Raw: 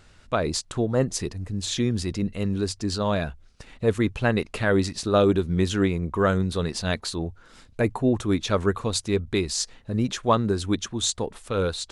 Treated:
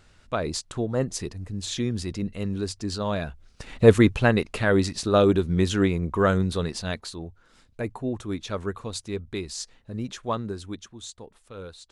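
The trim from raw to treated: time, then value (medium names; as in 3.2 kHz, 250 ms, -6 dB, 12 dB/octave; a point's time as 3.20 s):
3.27 s -3 dB
3.84 s +8.5 dB
4.43 s +0.5 dB
6.49 s +0.5 dB
7.19 s -7.5 dB
10.41 s -7.5 dB
11.04 s -15 dB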